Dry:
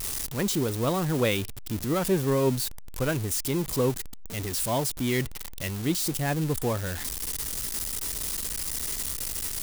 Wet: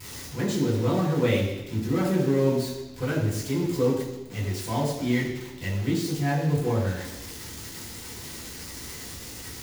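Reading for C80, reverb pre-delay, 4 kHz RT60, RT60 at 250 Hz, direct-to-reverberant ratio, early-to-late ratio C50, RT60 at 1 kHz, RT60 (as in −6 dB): 5.5 dB, 3 ms, 1.0 s, 1.0 s, −8.0 dB, 4.0 dB, 1.0 s, 1.0 s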